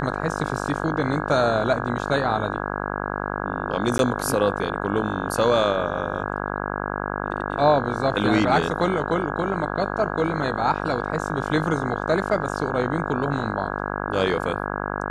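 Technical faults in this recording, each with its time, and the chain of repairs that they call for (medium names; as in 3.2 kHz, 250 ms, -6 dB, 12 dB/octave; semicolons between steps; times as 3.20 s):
buzz 50 Hz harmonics 33 -28 dBFS
3.98–3.99 s: dropout 12 ms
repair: de-hum 50 Hz, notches 33; interpolate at 3.98 s, 12 ms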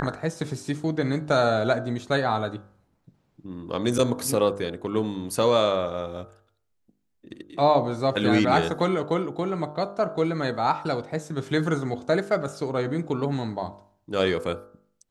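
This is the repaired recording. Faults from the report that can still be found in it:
nothing left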